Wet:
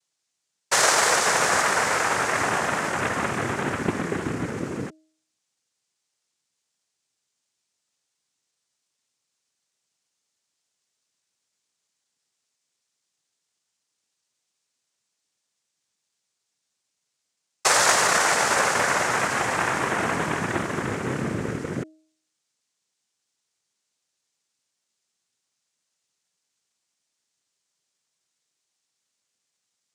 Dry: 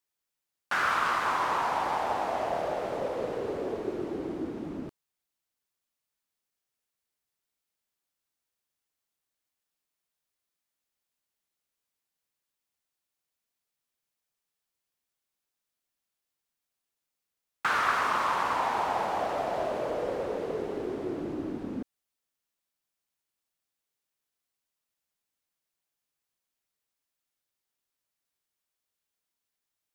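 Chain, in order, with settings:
cochlear-implant simulation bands 3
bass and treble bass +1 dB, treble +9 dB
hum removal 314.3 Hz, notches 2
level +6 dB

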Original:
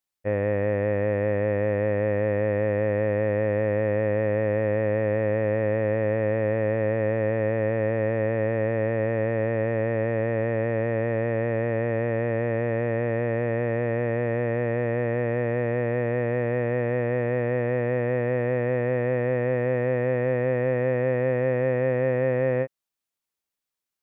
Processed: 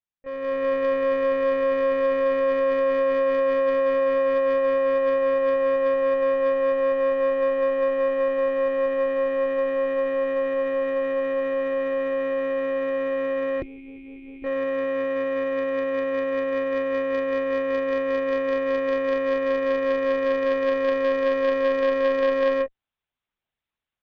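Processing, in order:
time-frequency box erased 0:13.61–0:14.45, 470–2,100 Hz
one-pitch LPC vocoder at 8 kHz 270 Hz
harmonic generator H 4 −13 dB, 6 −23 dB, 7 −34 dB, 8 −38 dB, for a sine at −15 dBFS
automatic gain control gain up to 12 dB
level −6.5 dB

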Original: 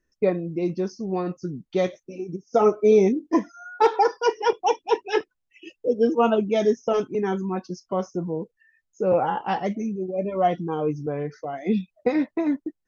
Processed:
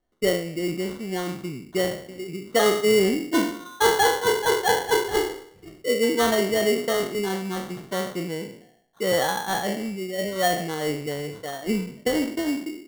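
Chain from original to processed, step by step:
peak hold with a decay on every bin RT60 0.63 s
sample-rate reduction 2,500 Hz, jitter 0%
level −3 dB

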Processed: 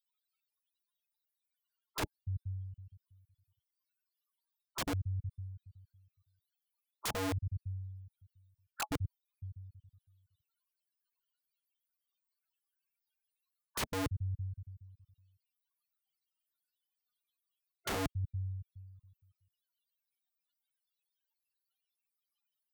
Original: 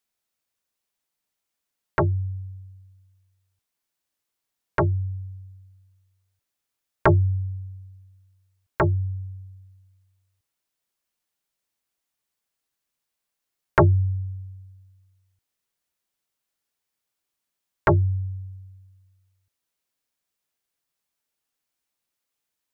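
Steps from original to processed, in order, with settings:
time-frequency cells dropped at random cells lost 39%
low-shelf EQ 380 Hz −10 dB
in parallel at −3 dB: brickwall limiter −21 dBFS, peak gain reduction 12 dB
on the sum: spectral peaks only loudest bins 16
high-pass filter 55 Hz 6 dB per octave
phaser with its sweep stopped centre 1,900 Hz, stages 6
wrap-around overflow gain 26.5 dB
reversed playback
downward compressor, threshold −40 dBFS, peak gain reduction 10.5 dB
reversed playback
level +6 dB

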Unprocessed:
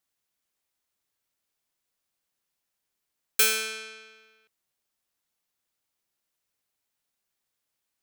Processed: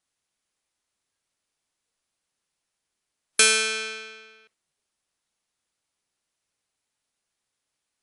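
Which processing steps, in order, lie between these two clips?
noise reduction from a noise print of the clip's start 7 dB
in parallel at −2.5 dB: downward compressor, threshold −35 dBFS, peak gain reduction 16.5 dB
on the sum: linear-phase brick-wall low-pass 11,000 Hz
level +5 dB

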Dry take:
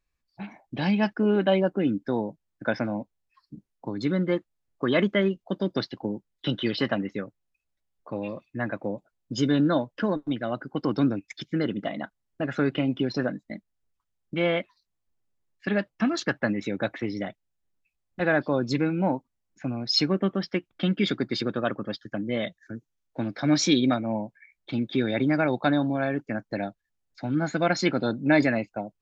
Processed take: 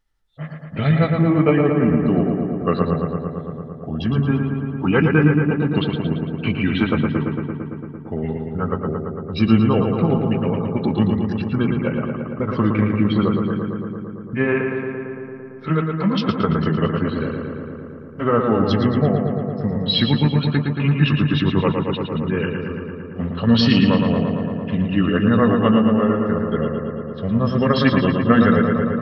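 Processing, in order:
pitch shift by two crossfaded delay taps −4.5 semitones
low-shelf EQ 120 Hz +3.5 dB
feedback echo with a low-pass in the loop 113 ms, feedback 81%, low-pass 3,500 Hz, level −4.5 dB
level +6 dB

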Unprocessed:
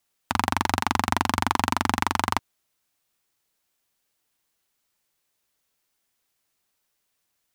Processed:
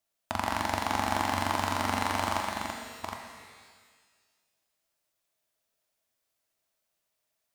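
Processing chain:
delay that plays each chunk backwards 451 ms, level −5.5 dB
parametric band 640 Hz +13 dB 0.21 octaves
reverb with rising layers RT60 1.6 s, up +12 semitones, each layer −8 dB, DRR 3 dB
level −8.5 dB

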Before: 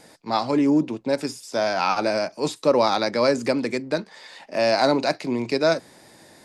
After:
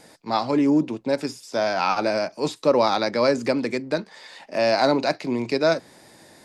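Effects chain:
dynamic equaliser 9,500 Hz, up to −5 dB, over −46 dBFS, Q 0.99

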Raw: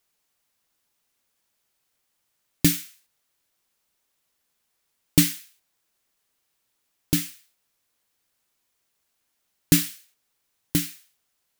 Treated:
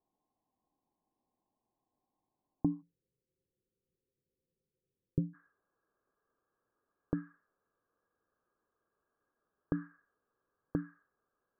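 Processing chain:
brickwall limiter −10.5 dBFS, peak gain reduction 9 dB
downward compressor 6 to 1, threshold −28 dBFS, peak gain reduction 9.5 dB
Chebyshev low-pass with heavy ripple 1,100 Hz, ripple 9 dB, from 0:02.81 540 Hz, from 0:05.33 1,700 Hz
level +5 dB

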